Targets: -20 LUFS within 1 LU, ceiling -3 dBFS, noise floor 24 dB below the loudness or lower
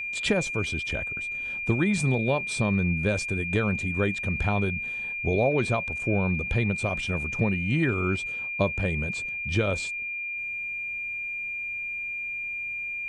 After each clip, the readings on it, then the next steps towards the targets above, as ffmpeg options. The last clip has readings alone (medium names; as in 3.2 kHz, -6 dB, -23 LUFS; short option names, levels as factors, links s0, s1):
steady tone 2.4 kHz; tone level -30 dBFS; loudness -27.0 LUFS; peak level -11.0 dBFS; loudness target -20.0 LUFS
-> -af "bandreject=f=2400:w=30"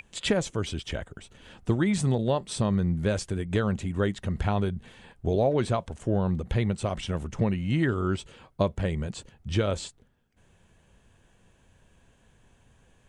steady tone not found; loudness -28.0 LUFS; peak level -12.0 dBFS; loudness target -20.0 LUFS
-> -af "volume=2.51"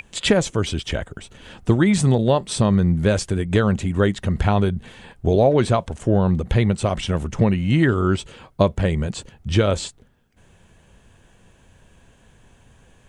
loudness -20.0 LUFS; peak level -4.0 dBFS; noise floor -55 dBFS